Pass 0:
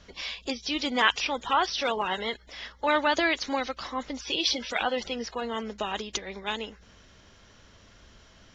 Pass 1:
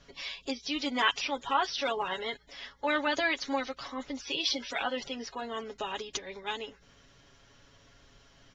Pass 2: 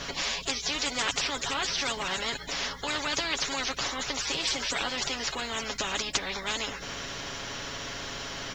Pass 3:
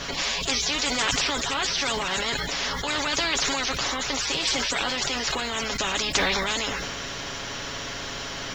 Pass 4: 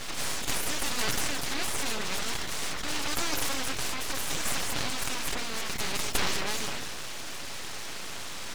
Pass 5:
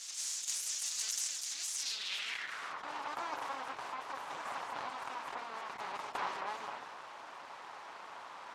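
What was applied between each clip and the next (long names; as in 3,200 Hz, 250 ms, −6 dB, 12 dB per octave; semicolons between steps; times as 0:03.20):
comb filter 7.2 ms, depth 64%; level −5.5 dB
every bin compressed towards the loudest bin 4 to 1
level that may fall only so fast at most 20 dB per second; level +3.5 dB
full-wave rectification; level −2 dB
band-pass filter sweep 6,600 Hz → 950 Hz, 0:01.73–0:02.81; level +1 dB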